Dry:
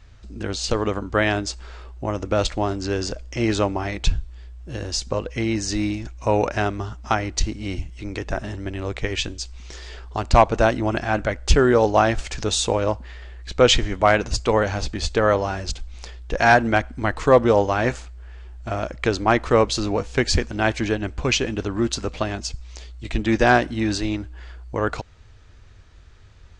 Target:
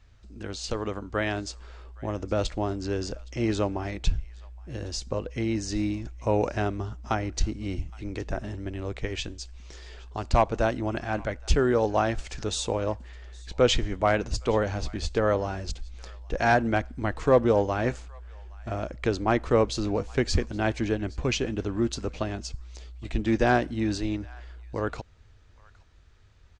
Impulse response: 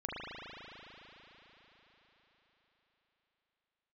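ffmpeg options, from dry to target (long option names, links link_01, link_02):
-filter_complex "[0:a]acrossover=split=620[link_01][link_02];[link_01]dynaudnorm=framelen=210:gausssize=17:maxgain=6dB[link_03];[link_02]aecho=1:1:817:0.0708[link_04];[link_03][link_04]amix=inputs=2:normalize=0,volume=-8.5dB"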